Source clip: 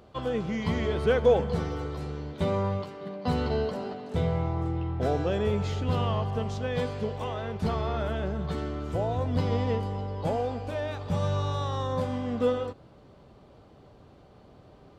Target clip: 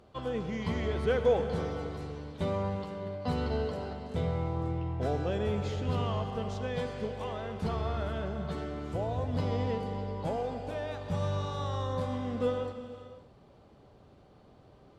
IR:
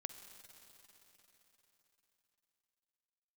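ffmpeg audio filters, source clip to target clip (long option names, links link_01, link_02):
-filter_complex "[1:a]atrim=start_sample=2205,afade=type=out:start_time=0.35:duration=0.01,atrim=end_sample=15876,asetrate=23373,aresample=44100[link_01];[0:a][link_01]afir=irnorm=-1:irlink=0,volume=-4dB"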